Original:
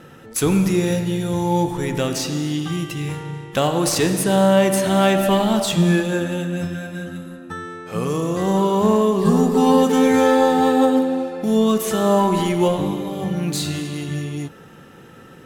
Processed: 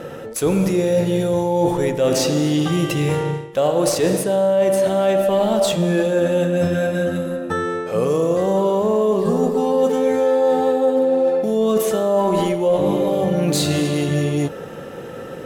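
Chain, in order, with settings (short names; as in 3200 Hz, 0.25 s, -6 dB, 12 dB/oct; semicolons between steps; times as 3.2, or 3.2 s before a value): bell 540 Hz +12.5 dB 0.8 oct; reverse; compressor 10:1, threshold -21 dBFS, peak gain reduction 19 dB; reverse; gain +6.5 dB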